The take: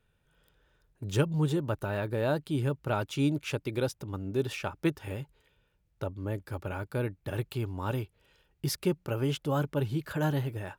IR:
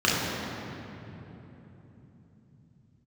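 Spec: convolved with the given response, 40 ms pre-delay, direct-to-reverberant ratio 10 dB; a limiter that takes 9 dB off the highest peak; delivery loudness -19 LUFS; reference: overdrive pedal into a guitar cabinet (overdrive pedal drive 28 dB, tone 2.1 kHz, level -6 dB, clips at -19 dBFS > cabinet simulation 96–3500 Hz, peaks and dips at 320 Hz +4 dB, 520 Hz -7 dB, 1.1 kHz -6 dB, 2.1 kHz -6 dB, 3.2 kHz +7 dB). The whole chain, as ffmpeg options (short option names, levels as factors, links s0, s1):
-filter_complex "[0:a]alimiter=limit=0.0708:level=0:latency=1,asplit=2[s0][s1];[1:a]atrim=start_sample=2205,adelay=40[s2];[s1][s2]afir=irnorm=-1:irlink=0,volume=0.0398[s3];[s0][s3]amix=inputs=2:normalize=0,asplit=2[s4][s5];[s5]highpass=f=720:p=1,volume=25.1,asoftclip=type=tanh:threshold=0.112[s6];[s4][s6]amix=inputs=2:normalize=0,lowpass=f=2100:p=1,volume=0.501,highpass=96,equalizer=f=320:t=q:w=4:g=4,equalizer=f=520:t=q:w=4:g=-7,equalizer=f=1100:t=q:w=4:g=-6,equalizer=f=2100:t=q:w=4:g=-6,equalizer=f=3200:t=q:w=4:g=7,lowpass=f=3500:w=0.5412,lowpass=f=3500:w=1.3066,volume=2.99"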